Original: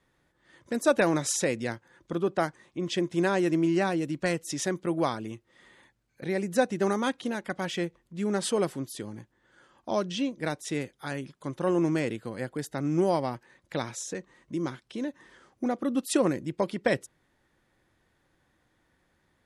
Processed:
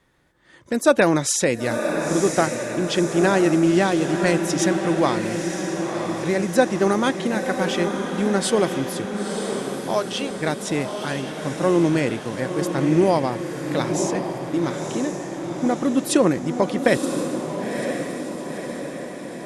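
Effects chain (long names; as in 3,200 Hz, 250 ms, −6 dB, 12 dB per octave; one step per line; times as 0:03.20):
0:09.05–0:10.31: high-pass filter 460 Hz
on a send: feedback delay with all-pass diffusion 985 ms, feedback 60%, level −6 dB
on the sum: level +7 dB
Opus 96 kbit/s 48,000 Hz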